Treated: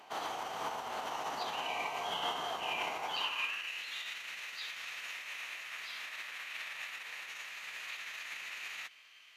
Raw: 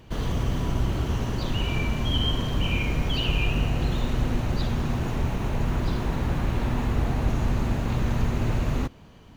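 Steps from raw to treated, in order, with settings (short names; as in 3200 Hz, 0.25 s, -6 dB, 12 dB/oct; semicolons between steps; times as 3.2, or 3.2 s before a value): limiter -22 dBFS, peak gain reduction 10 dB; high-pass sweep 790 Hz -> 2200 Hz, 3.09–3.72; formant-preserving pitch shift -7 st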